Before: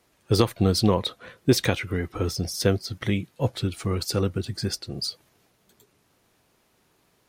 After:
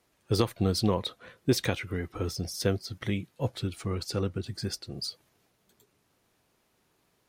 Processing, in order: 3.82–4.46 high shelf 10000 Hz -9 dB; gain -5.5 dB

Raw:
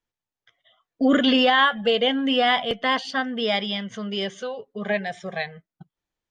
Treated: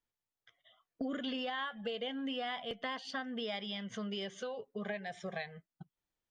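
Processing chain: compressor 6:1, threshold -31 dBFS, peak gain reduction 16 dB; gain -5.5 dB

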